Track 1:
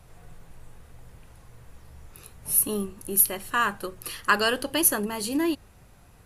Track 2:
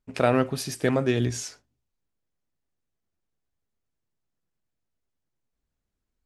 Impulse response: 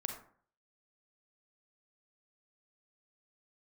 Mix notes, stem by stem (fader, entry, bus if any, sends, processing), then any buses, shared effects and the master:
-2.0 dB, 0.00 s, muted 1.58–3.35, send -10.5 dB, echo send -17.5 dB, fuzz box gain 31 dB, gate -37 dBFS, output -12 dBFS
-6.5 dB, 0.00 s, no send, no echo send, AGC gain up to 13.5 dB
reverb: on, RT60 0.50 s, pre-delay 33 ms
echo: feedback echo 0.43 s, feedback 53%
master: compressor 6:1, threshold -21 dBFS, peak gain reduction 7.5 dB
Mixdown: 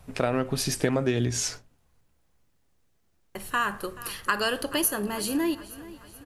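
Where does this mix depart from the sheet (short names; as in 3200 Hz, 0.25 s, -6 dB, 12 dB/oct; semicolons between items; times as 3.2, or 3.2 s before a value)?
stem 1: missing fuzz box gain 31 dB, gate -37 dBFS, output -12 dBFS; stem 2 -6.5 dB -> -0.5 dB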